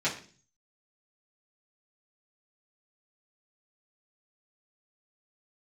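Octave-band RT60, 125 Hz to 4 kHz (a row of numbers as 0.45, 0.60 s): 0.75, 0.60, 0.45, 0.35, 0.40, 0.50 s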